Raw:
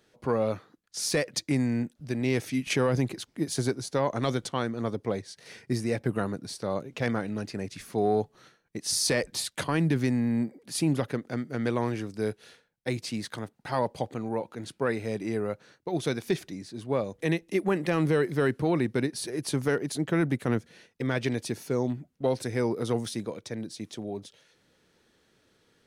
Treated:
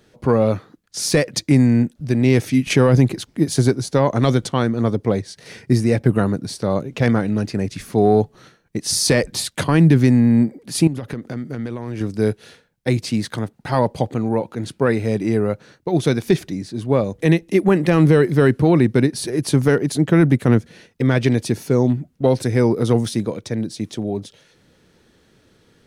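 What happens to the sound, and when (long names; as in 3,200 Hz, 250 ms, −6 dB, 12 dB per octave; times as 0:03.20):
0:10.87–0:12.01: downward compressor 16 to 1, threshold −34 dBFS
whole clip: low-shelf EQ 300 Hz +8 dB; level +7.5 dB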